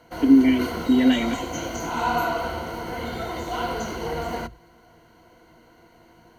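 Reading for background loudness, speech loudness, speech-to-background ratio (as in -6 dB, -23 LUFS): -29.0 LUFS, -19.5 LUFS, 9.5 dB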